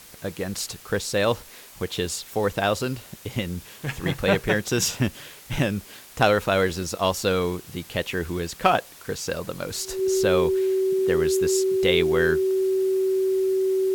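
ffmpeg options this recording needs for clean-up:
-af "bandreject=f=380:w=30,afwtdn=0.005"

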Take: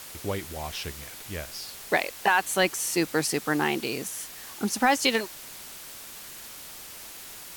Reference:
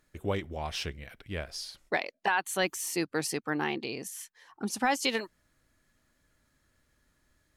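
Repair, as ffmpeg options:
-af "afwtdn=0.0079,asetnsamples=n=441:p=0,asendcmd='1.82 volume volume -5.5dB',volume=1"

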